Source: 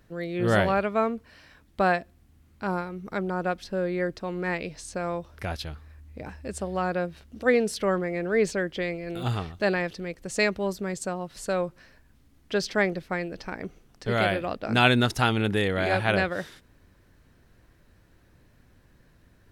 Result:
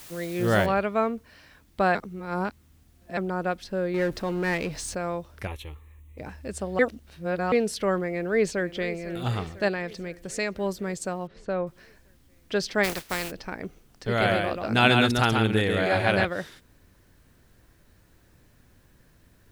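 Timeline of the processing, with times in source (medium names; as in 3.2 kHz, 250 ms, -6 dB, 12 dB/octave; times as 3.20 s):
0.66 s: noise floor step -46 dB -70 dB
1.95–3.17 s: reverse
3.94–4.95 s: power-law waveshaper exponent 0.7
5.47–6.18 s: static phaser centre 1 kHz, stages 8
6.79–7.52 s: reverse
8.08–9.08 s: echo throw 500 ms, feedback 65%, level -16 dB
9.68–10.57 s: compression 1.5:1, threshold -32 dBFS
11.27–11.67 s: tape spacing loss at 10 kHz 28 dB
12.83–13.30 s: spectral contrast reduction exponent 0.41
14.08–16.25 s: delay 135 ms -4 dB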